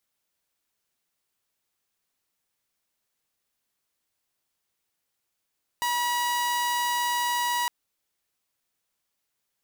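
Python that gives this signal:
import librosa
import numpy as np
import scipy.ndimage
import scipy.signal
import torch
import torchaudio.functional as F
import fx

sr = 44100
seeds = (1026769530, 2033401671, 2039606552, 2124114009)

y = 10.0 ** (-21.5 / 20.0) * (2.0 * np.mod(966.0 * (np.arange(round(1.86 * sr)) / sr), 1.0) - 1.0)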